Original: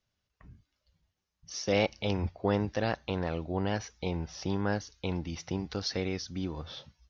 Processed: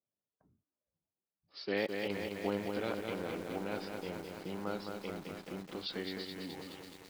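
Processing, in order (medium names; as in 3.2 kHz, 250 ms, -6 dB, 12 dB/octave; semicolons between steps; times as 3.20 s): formant shift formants -3 st; high-pass 240 Hz 12 dB/octave; level-controlled noise filter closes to 590 Hz, open at -31.5 dBFS; bit-crushed delay 212 ms, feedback 80%, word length 8-bit, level -4.5 dB; trim -6 dB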